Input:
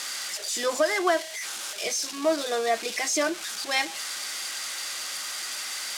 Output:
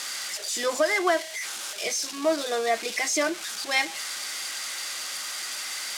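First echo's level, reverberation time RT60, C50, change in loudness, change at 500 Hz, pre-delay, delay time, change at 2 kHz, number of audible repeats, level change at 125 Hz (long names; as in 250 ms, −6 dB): no echo audible, no reverb audible, no reverb audible, +0.5 dB, 0.0 dB, no reverb audible, no echo audible, +1.5 dB, no echo audible, can't be measured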